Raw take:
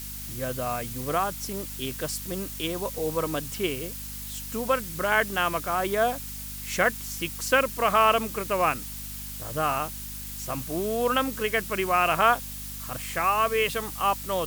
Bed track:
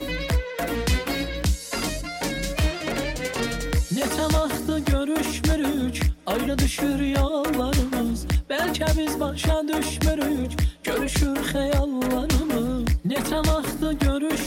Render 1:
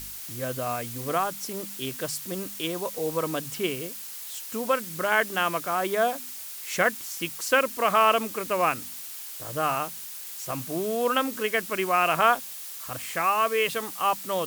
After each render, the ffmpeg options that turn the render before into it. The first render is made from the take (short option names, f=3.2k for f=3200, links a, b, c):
-af "bandreject=f=50:t=h:w=4,bandreject=f=100:t=h:w=4,bandreject=f=150:t=h:w=4,bandreject=f=200:t=h:w=4,bandreject=f=250:t=h:w=4"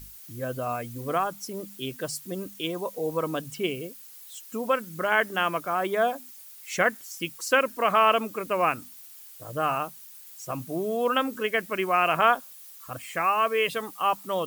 -af "afftdn=nr=12:nf=-39"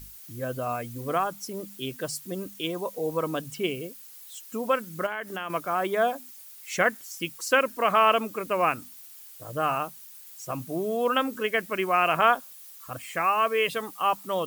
-filter_complex "[0:a]asettb=1/sr,asplit=3[a][b][c];[a]atrim=end=5.064[d];[b]atrim=start=5.06:end=5.5,asetpts=PTS-STARTPTS,afade=t=in:d=0.004:c=qsin,afade=t=out:st=0.436:d=0.004:c=qsin,acompressor=threshold=-30dB:ratio=4:attack=3.2:release=140:knee=1:detection=peak[e];[c]atrim=start=5.496[f];[d][e]acrossfade=d=0.004:c1=hsin:c2=qsin[g];[g][f]acrossfade=d=0.004:c1=qsin:c2=hsin"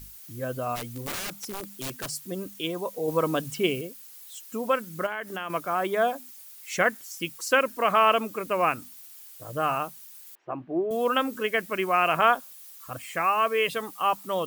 -filter_complex "[0:a]asplit=3[a][b][c];[a]afade=t=out:st=0.75:d=0.02[d];[b]aeval=exprs='(mod(25.1*val(0)+1,2)-1)/25.1':c=same,afade=t=in:st=0.75:d=0.02,afade=t=out:st=2.08:d=0.02[e];[c]afade=t=in:st=2.08:d=0.02[f];[d][e][f]amix=inputs=3:normalize=0,asettb=1/sr,asplit=3[g][h][i];[g]atrim=end=10.354[j];[h]atrim=start=10.35:end=10.91,asetpts=PTS-STARTPTS,afade=t=in:d=0.004:c=qsin,afade=t=out:st=0.556:d=0.004:c=qsin,highpass=190,equalizer=f=210:t=q:w=4:g=-8,equalizer=f=350:t=q:w=4:g=7,equalizer=f=510:t=q:w=4:g=-4,equalizer=f=790:t=q:w=4:g=3,equalizer=f=1.3k:t=q:w=4:g=-4,equalizer=f=2.2k:t=q:w=4:g=-4,lowpass=f=2.2k:w=0.5412,lowpass=f=2.2k:w=1.3066[k];[i]atrim=start=10.906[l];[j][k]acrossfade=d=0.004:c1=hsin:c2=qsin[m];[m][l]acrossfade=d=0.004:c1=qsin:c2=hsin,asplit=3[n][o][p];[n]atrim=end=3.082[q];[o]atrim=start=3.078:end=3.812,asetpts=PTS-STARTPTS,volume=3.5dB[r];[p]atrim=start=3.808[s];[q][r]acrossfade=d=0.004:c1=hsin:c2=hsin[t];[t][s]acrossfade=d=0.004:c1=hsin:c2=hsin"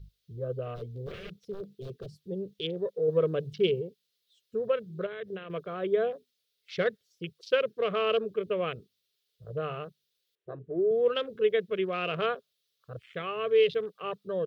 -af "afwtdn=0.0141,firequalizer=gain_entry='entry(180,0);entry(270,-17);entry(420,6);entry(850,-22);entry(1200,-12);entry(2300,-9);entry(3600,1);entry(7300,-19);entry(14000,-21)':delay=0.05:min_phase=1"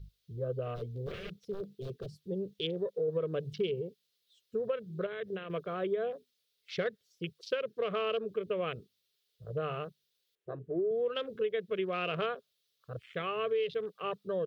-af "acompressor=threshold=-29dB:ratio=6"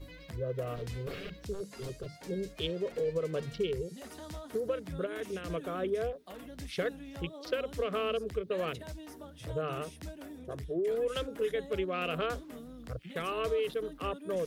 -filter_complex "[1:a]volume=-22.5dB[a];[0:a][a]amix=inputs=2:normalize=0"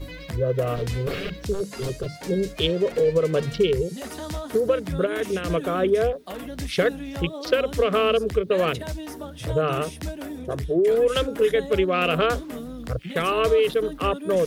-af "volume=12dB"